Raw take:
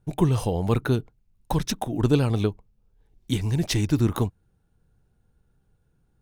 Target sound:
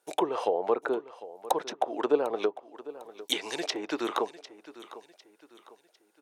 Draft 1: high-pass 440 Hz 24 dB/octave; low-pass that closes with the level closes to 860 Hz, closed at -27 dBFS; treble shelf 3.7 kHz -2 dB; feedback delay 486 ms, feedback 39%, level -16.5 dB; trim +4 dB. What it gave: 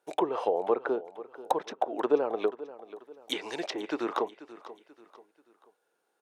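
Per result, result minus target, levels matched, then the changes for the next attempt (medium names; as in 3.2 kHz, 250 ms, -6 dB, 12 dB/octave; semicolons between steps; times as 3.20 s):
8 kHz band -7.5 dB; echo 265 ms early
change: treble shelf 3.7 kHz +8.5 dB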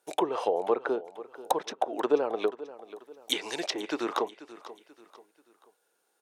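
echo 265 ms early
change: feedback delay 751 ms, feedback 39%, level -16.5 dB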